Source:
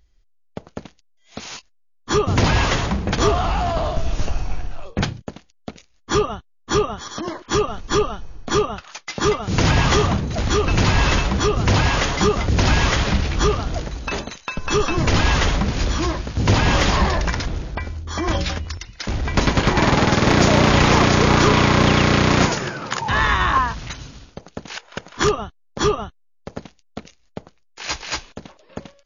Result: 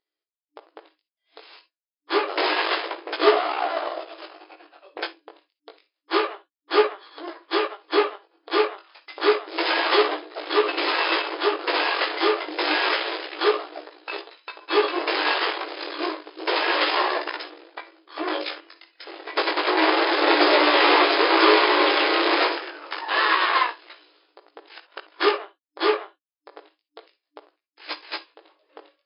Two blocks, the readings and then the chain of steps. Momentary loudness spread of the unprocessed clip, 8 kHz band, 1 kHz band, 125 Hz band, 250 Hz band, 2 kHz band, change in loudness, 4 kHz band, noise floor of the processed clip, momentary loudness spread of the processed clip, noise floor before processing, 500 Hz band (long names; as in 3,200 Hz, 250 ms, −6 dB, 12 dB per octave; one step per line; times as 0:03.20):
21 LU, can't be measured, −1.5 dB, below −40 dB, −8.0 dB, −1.0 dB, −2.5 dB, −0.5 dB, below −85 dBFS, 18 LU, −58 dBFS, −1.0 dB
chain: harmonic generator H 3 −20 dB, 6 −15 dB, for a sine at −7 dBFS
chorus effect 0.29 Hz, delay 16.5 ms, depth 4.3 ms
reverb whose tail is shaped and stops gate 80 ms rising, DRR 11 dB
brick-wall band-pass 300–5,200 Hz
expander for the loud parts 1.5 to 1, over −39 dBFS
level +5 dB